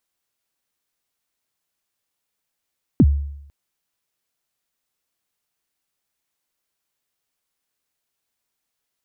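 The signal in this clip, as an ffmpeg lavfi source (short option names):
-f lavfi -i "aevalsrc='0.473*pow(10,-3*t/0.78)*sin(2*PI*(330*0.05/log(71/330)*(exp(log(71/330)*min(t,0.05)/0.05)-1)+71*max(t-0.05,0)))':d=0.5:s=44100"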